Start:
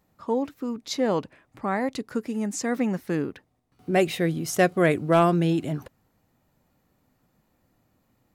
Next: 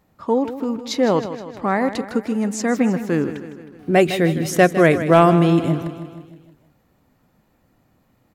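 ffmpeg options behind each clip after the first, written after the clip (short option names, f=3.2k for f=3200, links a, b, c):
-filter_complex "[0:a]bass=f=250:g=0,treble=f=4k:g=-4,asplit=2[a][b];[b]aecho=0:1:157|314|471|628|785|942:0.251|0.143|0.0816|0.0465|0.0265|0.0151[c];[a][c]amix=inputs=2:normalize=0,volume=6.5dB"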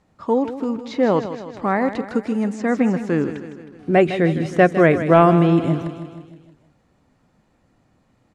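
-filter_complex "[0:a]acrossover=split=2900[a][b];[b]acompressor=threshold=-45dB:ratio=4:attack=1:release=60[c];[a][c]amix=inputs=2:normalize=0,lowpass=f=9.4k:w=0.5412,lowpass=f=9.4k:w=1.3066"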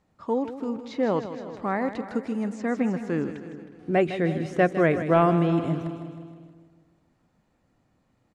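-filter_complex "[0:a]asplit=2[a][b];[b]adelay=362,lowpass=f=1.8k:p=1,volume=-16dB,asplit=2[c][d];[d]adelay=362,lowpass=f=1.8k:p=1,volume=0.31,asplit=2[e][f];[f]adelay=362,lowpass=f=1.8k:p=1,volume=0.31[g];[a][c][e][g]amix=inputs=4:normalize=0,volume=-7dB"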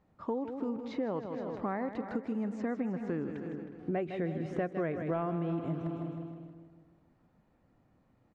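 -af "lowpass=f=1.7k:p=1,acompressor=threshold=-31dB:ratio=6"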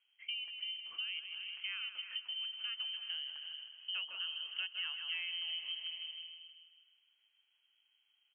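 -af "lowpass=f=2.8k:t=q:w=0.5098,lowpass=f=2.8k:t=q:w=0.6013,lowpass=f=2.8k:t=q:w=0.9,lowpass=f=2.8k:t=q:w=2.563,afreqshift=-3300,volume=-7.5dB"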